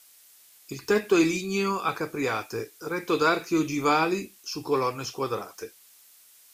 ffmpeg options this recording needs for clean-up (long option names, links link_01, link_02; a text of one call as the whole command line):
ffmpeg -i in.wav -af "adeclick=threshold=4,afftdn=noise_reduction=15:noise_floor=-55" out.wav